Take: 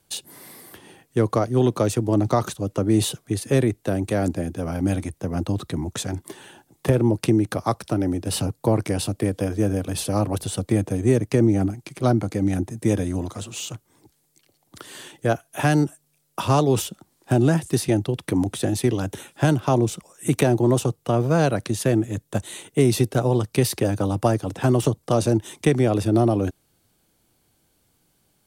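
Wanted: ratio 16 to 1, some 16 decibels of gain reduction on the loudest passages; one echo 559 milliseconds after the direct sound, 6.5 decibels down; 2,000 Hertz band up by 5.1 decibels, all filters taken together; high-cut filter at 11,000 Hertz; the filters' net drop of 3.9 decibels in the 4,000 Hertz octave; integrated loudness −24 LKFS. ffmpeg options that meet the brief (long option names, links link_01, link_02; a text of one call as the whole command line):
ffmpeg -i in.wav -af "lowpass=11000,equalizer=frequency=2000:width_type=o:gain=8.5,equalizer=frequency=4000:width_type=o:gain=-8,acompressor=threshold=-29dB:ratio=16,aecho=1:1:559:0.473,volume=10.5dB" out.wav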